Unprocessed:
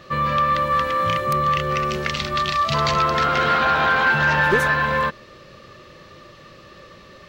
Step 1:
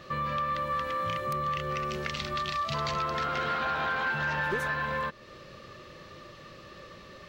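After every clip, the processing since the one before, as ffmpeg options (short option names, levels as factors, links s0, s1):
-af "acompressor=threshold=0.0282:ratio=2,volume=0.668"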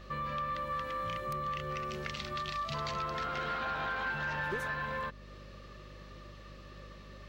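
-af "aeval=exprs='val(0)+0.00562*(sin(2*PI*50*n/s)+sin(2*PI*2*50*n/s)/2+sin(2*PI*3*50*n/s)/3+sin(2*PI*4*50*n/s)/4+sin(2*PI*5*50*n/s)/5)':c=same,volume=0.531"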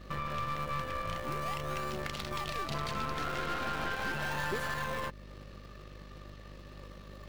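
-filter_complex "[0:a]asplit=2[s0][s1];[s1]acrusher=samples=29:mix=1:aa=0.000001:lfo=1:lforange=29:lforate=0.38,volume=0.447[s2];[s0][s2]amix=inputs=2:normalize=0,aeval=exprs='0.0944*(cos(1*acos(clip(val(0)/0.0944,-1,1)))-cos(1*PI/2))+0.0106*(cos(8*acos(clip(val(0)/0.0944,-1,1)))-cos(8*PI/2))':c=same,volume=0.841"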